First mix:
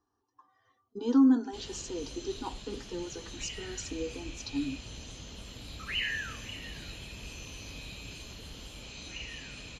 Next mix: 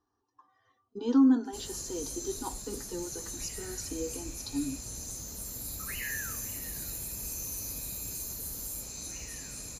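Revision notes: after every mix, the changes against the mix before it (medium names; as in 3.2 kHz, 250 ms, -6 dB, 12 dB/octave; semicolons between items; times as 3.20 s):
background: remove resonant low-pass 3.1 kHz, resonance Q 6.7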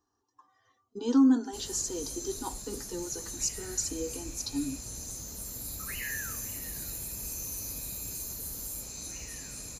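speech: remove distance through air 130 m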